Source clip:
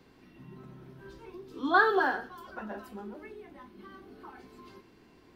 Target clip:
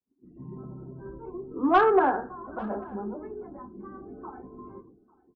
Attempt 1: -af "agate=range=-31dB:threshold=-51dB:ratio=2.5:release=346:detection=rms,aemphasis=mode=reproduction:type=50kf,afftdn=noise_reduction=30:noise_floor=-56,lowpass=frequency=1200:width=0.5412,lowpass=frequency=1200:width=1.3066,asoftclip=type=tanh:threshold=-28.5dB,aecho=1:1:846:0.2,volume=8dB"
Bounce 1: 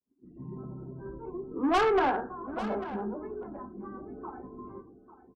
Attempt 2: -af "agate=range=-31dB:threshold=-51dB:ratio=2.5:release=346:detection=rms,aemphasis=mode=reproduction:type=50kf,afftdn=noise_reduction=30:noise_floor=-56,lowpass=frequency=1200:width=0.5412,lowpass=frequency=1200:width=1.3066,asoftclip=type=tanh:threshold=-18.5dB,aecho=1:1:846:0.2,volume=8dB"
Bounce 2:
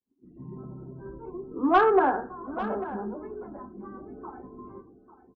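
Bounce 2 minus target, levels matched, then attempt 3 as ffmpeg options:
echo-to-direct +9.5 dB
-af "agate=range=-31dB:threshold=-51dB:ratio=2.5:release=346:detection=rms,aemphasis=mode=reproduction:type=50kf,afftdn=noise_reduction=30:noise_floor=-56,lowpass=frequency=1200:width=0.5412,lowpass=frequency=1200:width=1.3066,asoftclip=type=tanh:threshold=-18.5dB,aecho=1:1:846:0.0668,volume=8dB"

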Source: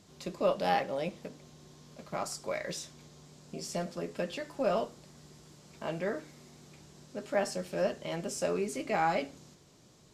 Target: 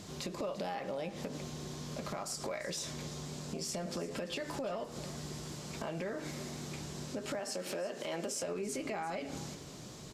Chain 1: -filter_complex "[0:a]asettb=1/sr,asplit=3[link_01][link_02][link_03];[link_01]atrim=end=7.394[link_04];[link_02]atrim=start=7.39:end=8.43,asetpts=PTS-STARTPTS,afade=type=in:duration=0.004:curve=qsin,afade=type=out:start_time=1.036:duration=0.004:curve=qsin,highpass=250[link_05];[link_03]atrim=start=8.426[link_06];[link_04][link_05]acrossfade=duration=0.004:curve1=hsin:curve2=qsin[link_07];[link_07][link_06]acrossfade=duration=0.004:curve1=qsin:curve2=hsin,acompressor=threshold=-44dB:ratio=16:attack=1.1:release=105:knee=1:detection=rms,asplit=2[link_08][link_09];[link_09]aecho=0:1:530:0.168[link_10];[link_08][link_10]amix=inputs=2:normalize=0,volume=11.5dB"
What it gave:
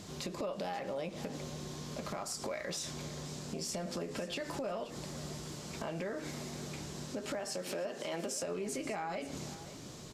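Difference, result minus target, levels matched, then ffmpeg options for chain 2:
echo 188 ms late
-filter_complex "[0:a]asettb=1/sr,asplit=3[link_01][link_02][link_03];[link_01]atrim=end=7.394[link_04];[link_02]atrim=start=7.39:end=8.43,asetpts=PTS-STARTPTS,afade=type=in:duration=0.004:curve=qsin,afade=type=out:start_time=1.036:duration=0.004:curve=qsin,highpass=250[link_05];[link_03]atrim=start=8.426[link_06];[link_04][link_05]acrossfade=duration=0.004:curve1=hsin:curve2=qsin[link_07];[link_07][link_06]acrossfade=duration=0.004:curve1=qsin:curve2=hsin,acompressor=threshold=-44dB:ratio=16:attack=1.1:release=105:knee=1:detection=rms,asplit=2[link_08][link_09];[link_09]aecho=0:1:342:0.168[link_10];[link_08][link_10]amix=inputs=2:normalize=0,volume=11.5dB"

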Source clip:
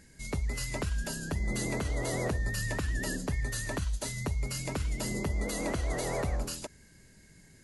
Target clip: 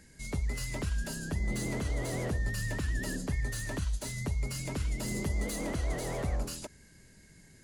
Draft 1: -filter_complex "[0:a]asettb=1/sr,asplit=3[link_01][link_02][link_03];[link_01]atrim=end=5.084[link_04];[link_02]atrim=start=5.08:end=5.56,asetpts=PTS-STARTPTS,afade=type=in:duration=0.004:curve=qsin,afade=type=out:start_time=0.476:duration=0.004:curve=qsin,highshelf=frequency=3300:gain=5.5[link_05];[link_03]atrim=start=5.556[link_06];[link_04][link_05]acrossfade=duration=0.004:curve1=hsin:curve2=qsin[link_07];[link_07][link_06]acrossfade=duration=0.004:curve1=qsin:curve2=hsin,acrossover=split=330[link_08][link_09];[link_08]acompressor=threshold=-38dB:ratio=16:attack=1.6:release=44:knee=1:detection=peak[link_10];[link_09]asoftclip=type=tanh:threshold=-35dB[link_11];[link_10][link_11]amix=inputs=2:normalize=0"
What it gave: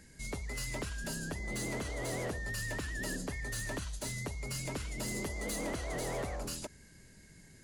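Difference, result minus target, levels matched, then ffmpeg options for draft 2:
downward compressor: peak gain reduction +13 dB
-filter_complex "[0:a]asettb=1/sr,asplit=3[link_01][link_02][link_03];[link_01]atrim=end=5.084[link_04];[link_02]atrim=start=5.08:end=5.56,asetpts=PTS-STARTPTS,afade=type=in:duration=0.004:curve=qsin,afade=type=out:start_time=0.476:duration=0.004:curve=qsin,highshelf=frequency=3300:gain=5.5[link_05];[link_03]atrim=start=5.556[link_06];[link_04][link_05]acrossfade=duration=0.004:curve1=hsin:curve2=qsin[link_07];[link_07][link_06]acrossfade=duration=0.004:curve1=qsin:curve2=hsin,acrossover=split=330[link_08][link_09];[link_09]asoftclip=type=tanh:threshold=-35dB[link_10];[link_08][link_10]amix=inputs=2:normalize=0"

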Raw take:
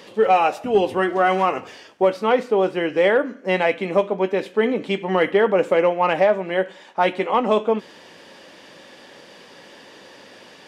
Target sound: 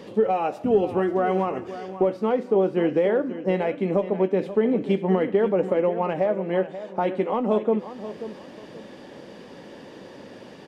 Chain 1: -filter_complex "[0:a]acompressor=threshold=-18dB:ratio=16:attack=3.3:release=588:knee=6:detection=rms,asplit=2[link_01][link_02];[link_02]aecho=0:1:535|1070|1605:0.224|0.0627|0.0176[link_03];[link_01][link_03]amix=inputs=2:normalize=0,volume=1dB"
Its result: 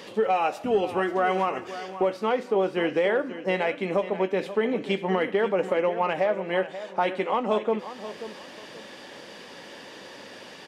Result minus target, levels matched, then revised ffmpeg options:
1,000 Hz band +3.5 dB
-filter_complex "[0:a]acompressor=threshold=-18dB:ratio=16:attack=3.3:release=588:knee=6:detection=rms,tiltshelf=frequency=710:gain=8,asplit=2[link_01][link_02];[link_02]aecho=0:1:535|1070|1605:0.224|0.0627|0.0176[link_03];[link_01][link_03]amix=inputs=2:normalize=0,volume=1dB"

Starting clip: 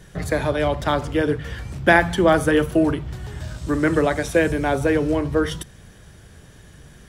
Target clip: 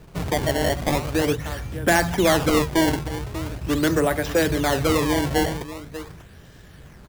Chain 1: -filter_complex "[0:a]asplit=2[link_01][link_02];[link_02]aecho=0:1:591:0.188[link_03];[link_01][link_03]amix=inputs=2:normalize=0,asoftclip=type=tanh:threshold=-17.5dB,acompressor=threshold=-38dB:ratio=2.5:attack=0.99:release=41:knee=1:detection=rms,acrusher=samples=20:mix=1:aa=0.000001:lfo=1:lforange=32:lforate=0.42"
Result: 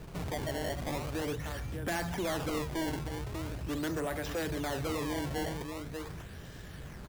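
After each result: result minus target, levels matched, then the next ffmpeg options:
downward compressor: peak gain reduction +12 dB; soft clipping: distortion +6 dB
-filter_complex "[0:a]asplit=2[link_01][link_02];[link_02]aecho=0:1:591:0.188[link_03];[link_01][link_03]amix=inputs=2:normalize=0,acrusher=samples=20:mix=1:aa=0.000001:lfo=1:lforange=32:lforate=0.42,asoftclip=type=tanh:threshold=-17.5dB"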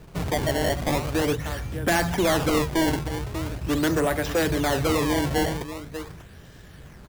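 soft clipping: distortion +6 dB
-filter_complex "[0:a]asplit=2[link_01][link_02];[link_02]aecho=0:1:591:0.188[link_03];[link_01][link_03]amix=inputs=2:normalize=0,acrusher=samples=20:mix=1:aa=0.000001:lfo=1:lforange=32:lforate=0.42,asoftclip=type=tanh:threshold=-11dB"

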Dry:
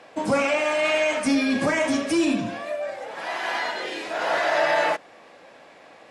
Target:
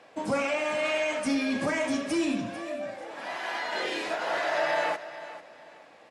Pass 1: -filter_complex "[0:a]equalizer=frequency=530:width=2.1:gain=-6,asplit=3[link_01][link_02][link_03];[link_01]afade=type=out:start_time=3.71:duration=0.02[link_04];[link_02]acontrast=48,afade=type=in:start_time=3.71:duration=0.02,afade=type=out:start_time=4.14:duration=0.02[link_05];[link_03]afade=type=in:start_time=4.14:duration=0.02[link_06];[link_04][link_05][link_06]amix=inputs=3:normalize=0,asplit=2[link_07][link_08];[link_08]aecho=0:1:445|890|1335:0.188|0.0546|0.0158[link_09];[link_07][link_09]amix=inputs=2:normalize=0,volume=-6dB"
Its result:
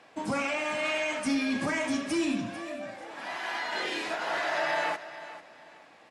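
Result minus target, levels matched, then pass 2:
500 Hz band −3.0 dB
-filter_complex "[0:a]asplit=3[link_01][link_02][link_03];[link_01]afade=type=out:start_time=3.71:duration=0.02[link_04];[link_02]acontrast=48,afade=type=in:start_time=3.71:duration=0.02,afade=type=out:start_time=4.14:duration=0.02[link_05];[link_03]afade=type=in:start_time=4.14:duration=0.02[link_06];[link_04][link_05][link_06]amix=inputs=3:normalize=0,asplit=2[link_07][link_08];[link_08]aecho=0:1:445|890|1335:0.188|0.0546|0.0158[link_09];[link_07][link_09]amix=inputs=2:normalize=0,volume=-6dB"

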